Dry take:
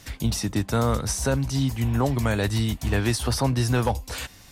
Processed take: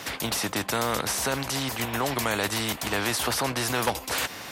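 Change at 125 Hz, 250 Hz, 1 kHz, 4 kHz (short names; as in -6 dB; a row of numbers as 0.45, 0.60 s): -12.5, -6.0, +2.0, +3.5 dB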